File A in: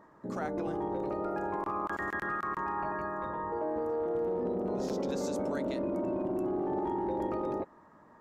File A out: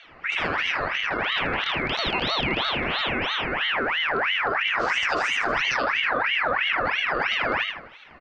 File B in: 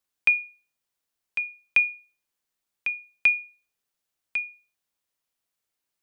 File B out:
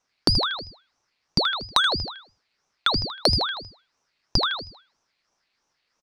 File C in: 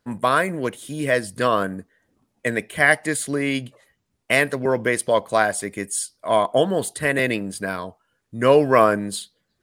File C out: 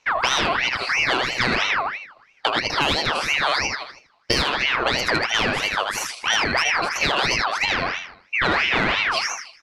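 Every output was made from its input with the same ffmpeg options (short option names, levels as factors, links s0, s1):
-filter_complex "[0:a]acrossover=split=790[s0][s1];[s0]aeval=exprs='clip(val(0),-1,0.0708)':c=same[s2];[s2][s1]amix=inputs=2:normalize=0,lowpass=f=3400:t=q:w=5.4,asplit=2[s3][s4];[s4]aecho=0:1:79|158|237|316|395:0.596|0.238|0.0953|0.0381|0.0152[s5];[s3][s5]amix=inputs=2:normalize=0,acontrast=83,equalizer=f=170:w=1.8:g=9,acompressor=threshold=0.126:ratio=5,aeval=exprs='val(0)*sin(2*PI*1700*n/s+1700*0.5/3*sin(2*PI*3*n/s))':c=same,volume=1.26"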